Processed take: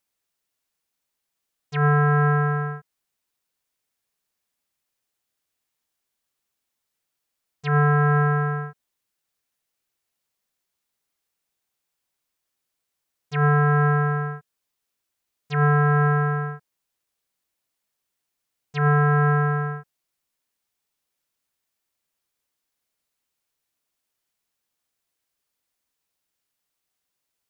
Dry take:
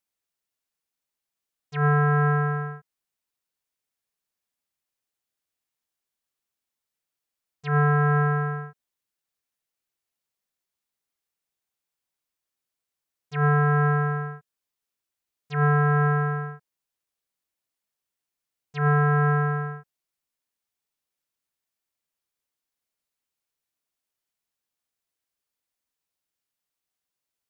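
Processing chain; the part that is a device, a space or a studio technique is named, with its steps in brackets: parallel compression (in parallel at -1 dB: compressor, threshold -30 dBFS, peak gain reduction 11.5 dB)

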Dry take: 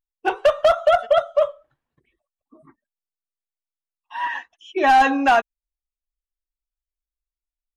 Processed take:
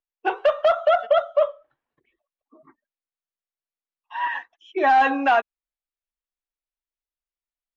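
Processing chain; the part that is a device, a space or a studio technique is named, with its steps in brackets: DJ mixer with the lows and highs turned down (three-band isolator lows -12 dB, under 280 Hz, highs -17 dB, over 4100 Hz; limiter -9.5 dBFS, peak gain reduction 3 dB); 4.38–4.98 bell 2800 Hz -7 dB 0.37 oct

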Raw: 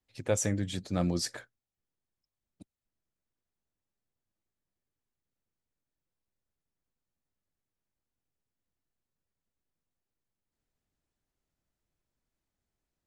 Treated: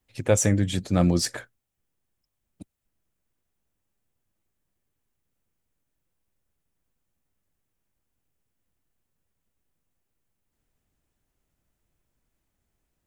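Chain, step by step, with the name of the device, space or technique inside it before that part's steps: low shelf 150 Hz +3.5 dB; exciter from parts (in parallel at -8 dB: HPF 3600 Hz 12 dB/oct + soft clip -36.5 dBFS, distortion -6 dB + HPF 2800 Hz 24 dB/oct); on the sum: gain +7.5 dB

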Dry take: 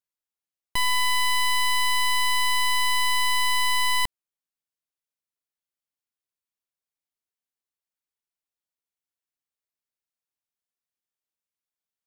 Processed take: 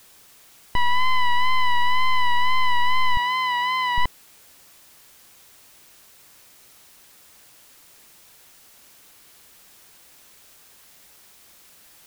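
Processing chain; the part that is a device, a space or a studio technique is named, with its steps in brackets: cassette deck with a dirty head (tape spacing loss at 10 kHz 34 dB; wow and flutter; white noise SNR 30 dB); 3.17–3.98 HPF 200 Hz 12 dB/oct; gain +7.5 dB

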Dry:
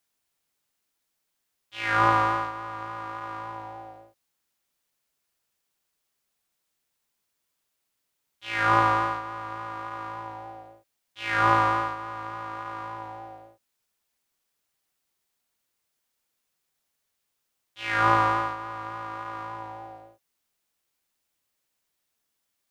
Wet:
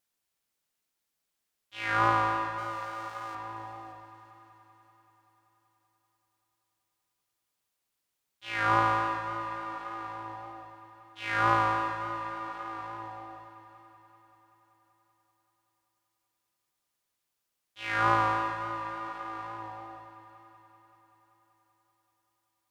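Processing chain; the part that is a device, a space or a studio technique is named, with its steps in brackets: 2.58–3.35 tone controls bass -14 dB, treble +11 dB; multi-head tape echo (multi-head echo 0.192 s, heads second and third, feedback 48%, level -15 dB; wow and flutter 14 cents); gain -4 dB

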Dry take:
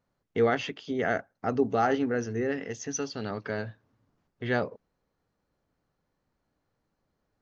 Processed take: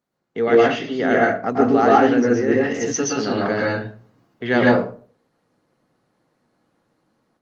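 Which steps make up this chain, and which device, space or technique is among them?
far-field microphone of a smart speaker (reverb RT60 0.45 s, pre-delay 0.11 s, DRR -3.5 dB; HPF 140 Hz 24 dB/oct; AGC gain up to 9 dB; Opus 24 kbps 48000 Hz)

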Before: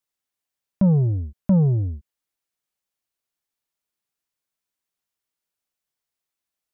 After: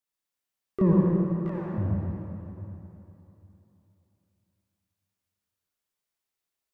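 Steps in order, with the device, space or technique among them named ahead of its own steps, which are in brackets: 0.93–1.78 steep high-pass 650 Hz 36 dB/oct; shimmer-style reverb (harmoniser +12 st -6 dB; reverb RT60 3.2 s, pre-delay 53 ms, DRR -3.5 dB); gain -6 dB

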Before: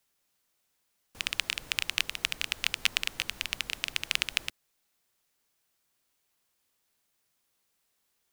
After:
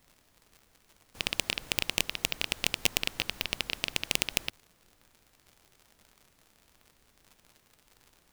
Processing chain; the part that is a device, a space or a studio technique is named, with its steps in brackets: record under a worn stylus (tracing distortion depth 0.11 ms; crackle 93/s -43 dBFS; pink noise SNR 30 dB)

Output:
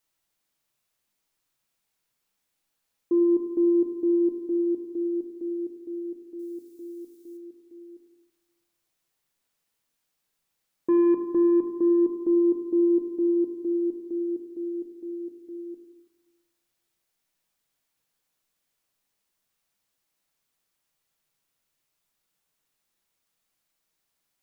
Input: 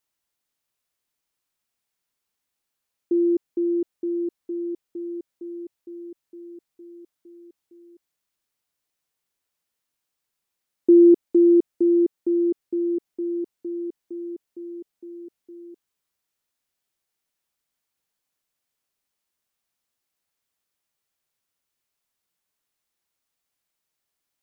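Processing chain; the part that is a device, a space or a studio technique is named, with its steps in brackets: soft clipper into limiter (soft clip -13.5 dBFS, distortion -13 dB; limiter -21.5 dBFS, peak gain reduction 7.5 dB); 6.39–7.37 tone controls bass +2 dB, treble +13 dB; shoebox room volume 280 m³, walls mixed, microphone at 0.66 m; gain +2 dB

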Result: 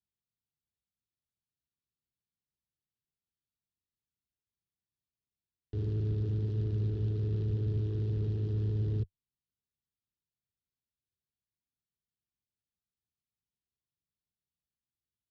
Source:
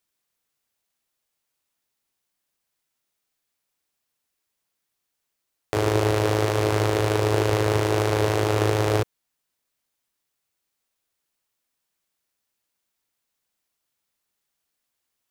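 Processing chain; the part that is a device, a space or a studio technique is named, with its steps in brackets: guitar amplifier (tube stage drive 27 dB, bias 0.7; tone controls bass +11 dB, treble +10 dB; speaker cabinet 77–3900 Hz, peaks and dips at 92 Hz -4 dB, 410 Hz +8 dB, 580 Hz -7 dB, 2200 Hz -8 dB); passive tone stack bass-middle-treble 10-0-1; gain +6 dB

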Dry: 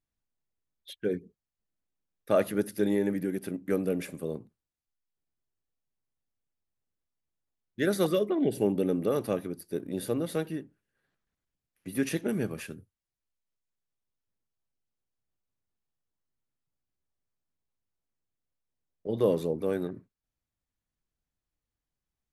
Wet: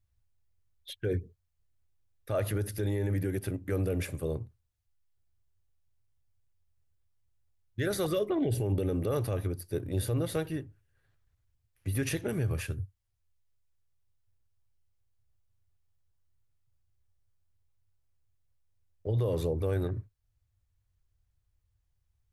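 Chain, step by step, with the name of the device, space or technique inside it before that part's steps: car stereo with a boomy subwoofer (resonant low shelf 140 Hz +12 dB, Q 3; limiter -23.5 dBFS, peak gain reduction 11 dB); gain +2 dB

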